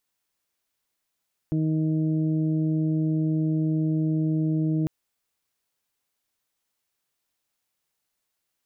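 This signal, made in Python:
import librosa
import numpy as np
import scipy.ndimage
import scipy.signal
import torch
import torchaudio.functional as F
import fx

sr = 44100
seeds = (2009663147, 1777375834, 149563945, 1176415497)

y = fx.additive_steady(sr, length_s=3.35, hz=157.0, level_db=-23, upper_db=(-2.0, -19, -20))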